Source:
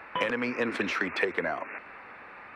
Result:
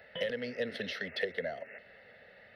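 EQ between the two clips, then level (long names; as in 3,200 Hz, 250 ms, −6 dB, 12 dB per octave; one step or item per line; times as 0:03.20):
low-shelf EQ 69 Hz −9 dB
flat-topped bell 1,100 Hz −16 dB 1.3 octaves
phaser with its sweep stopped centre 1,600 Hz, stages 8
0.0 dB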